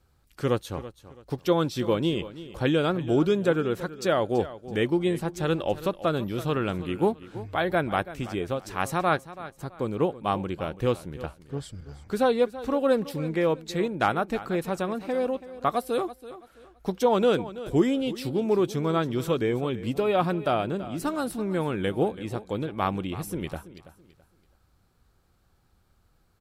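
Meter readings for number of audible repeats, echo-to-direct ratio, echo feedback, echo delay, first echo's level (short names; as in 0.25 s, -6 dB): 2, -15.0 dB, 30%, 0.331 s, -15.5 dB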